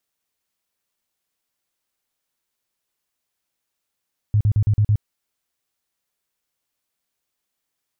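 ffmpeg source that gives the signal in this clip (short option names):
-f lavfi -i "aevalsrc='0.224*sin(2*PI*105*mod(t,0.11))*lt(mod(t,0.11),7/105)':d=0.66:s=44100"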